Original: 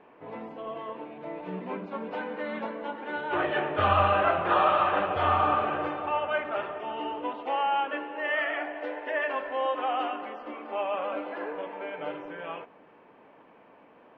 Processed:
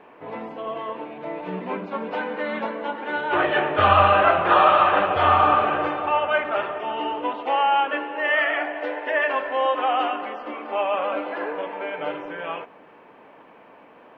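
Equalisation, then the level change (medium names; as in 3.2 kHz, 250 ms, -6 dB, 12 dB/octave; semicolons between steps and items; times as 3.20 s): bass shelf 490 Hz -4 dB; +8.0 dB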